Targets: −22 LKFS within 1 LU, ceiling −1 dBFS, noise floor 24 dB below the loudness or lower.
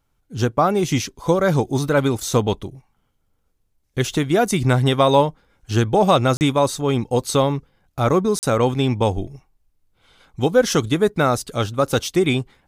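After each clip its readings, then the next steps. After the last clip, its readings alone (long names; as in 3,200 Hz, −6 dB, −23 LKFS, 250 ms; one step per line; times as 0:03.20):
number of dropouts 2; longest dropout 39 ms; integrated loudness −19.5 LKFS; sample peak −3.5 dBFS; target loudness −22.0 LKFS
→ repair the gap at 0:06.37/0:08.39, 39 ms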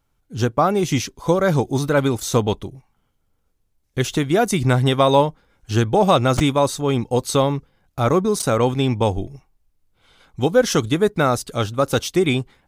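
number of dropouts 0; integrated loudness −19.5 LKFS; sample peak −3.5 dBFS; target loudness −22.0 LKFS
→ level −2.5 dB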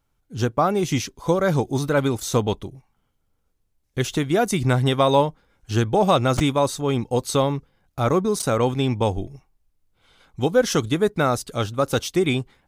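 integrated loudness −22.0 LKFS; sample peak −6.0 dBFS; background noise floor −70 dBFS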